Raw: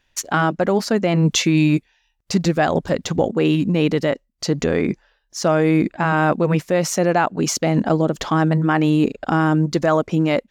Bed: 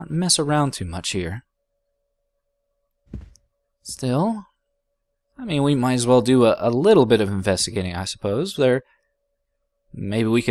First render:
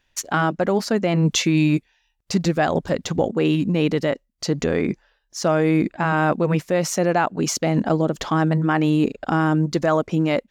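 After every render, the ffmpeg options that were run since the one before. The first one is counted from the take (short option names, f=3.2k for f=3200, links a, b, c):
-af "volume=-2dB"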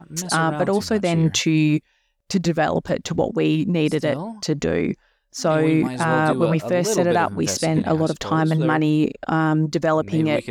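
-filter_complex "[1:a]volume=-9.5dB[a];[0:a][a]amix=inputs=2:normalize=0"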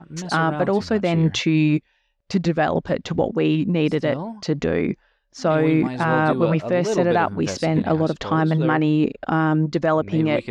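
-af "lowpass=4k"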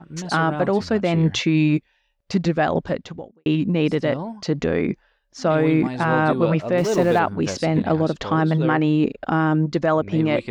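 -filter_complex "[0:a]asettb=1/sr,asplit=3[a][b][c];[a]atrim=end=6.784[d];[b]atrim=start=6.78:end=7.19,asetpts=PTS-STARTPTS,afade=t=in:d=0.004:c=qsin,afade=t=out:st=0.406:d=0.004:c=qsin,aeval=exprs='val(0)+0.5*0.0266*sgn(val(0))':c=same[e];[c]atrim=start=7.186[f];[d][e]acrossfade=d=0.004:c1=hsin:c2=qsin[g];[g][f]acrossfade=d=0.004:c1=qsin:c2=hsin,asplit=2[h][i];[h]atrim=end=3.46,asetpts=PTS-STARTPTS,afade=t=out:st=2.87:d=0.59:c=qua[j];[i]atrim=start=3.46,asetpts=PTS-STARTPTS,afade=t=in:d=0.004:c=hsin[k];[j][k]concat=n=2:v=0:a=1"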